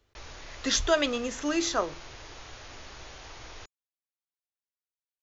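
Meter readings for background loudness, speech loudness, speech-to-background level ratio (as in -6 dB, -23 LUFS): -45.5 LUFS, -28.0 LUFS, 17.5 dB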